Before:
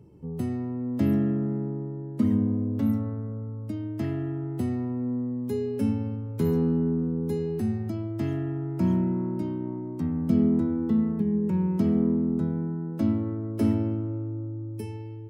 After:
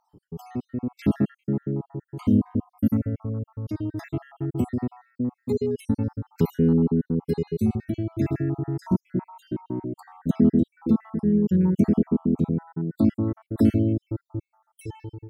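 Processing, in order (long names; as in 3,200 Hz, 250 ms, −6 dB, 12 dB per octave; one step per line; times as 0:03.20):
time-frequency cells dropped at random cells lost 61%
automatic gain control gain up to 4 dB
level +1.5 dB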